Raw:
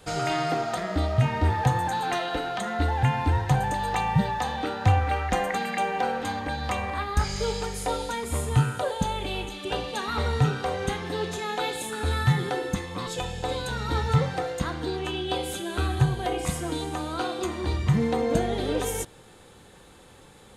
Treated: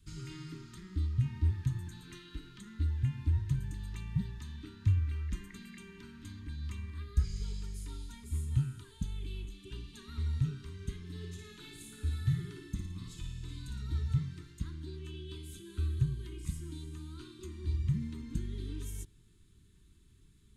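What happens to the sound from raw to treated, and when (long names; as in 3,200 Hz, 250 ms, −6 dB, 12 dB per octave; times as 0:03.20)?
0:11.03–0:13.82: flutter between parallel walls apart 9.6 metres, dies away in 0.62 s
whole clip: Chebyshev band-stop filter 420–910 Hz, order 5; guitar amp tone stack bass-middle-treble 10-0-1; level +4.5 dB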